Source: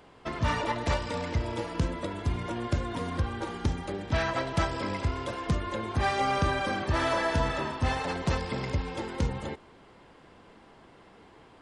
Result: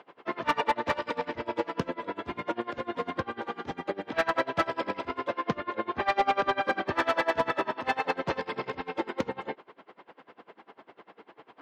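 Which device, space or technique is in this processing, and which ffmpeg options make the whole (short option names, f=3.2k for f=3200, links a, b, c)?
helicopter radio: -filter_complex "[0:a]highpass=320,lowpass=2.8k,aeval=exprs='val(0)*pow(10,-25*(0.5-0.5*cos(2*PI*10*n/s))/20)':c=same,asoftclip=type=hard:threshold=-26.5dB,asettb=1/sr,asplit=3[a][b][c];[a]atrim=end=5.284[d];[b]atrim=start=5.28:end=6.61,asetpts=PTS-STARTPTS,afade=t=in:d=0.004:c=qsin,afade=t=out:st=1.326:d=0.004:c=qsin,lowpass=5.9k[e];[c]atrim=start=6.606[f];[d][e]acrossfade=d=0.004:c1=hsin:c2=qsin[g];[g][f]acrossfade=d=0.004:c1=qsin:c2=hsin,volume=9dB"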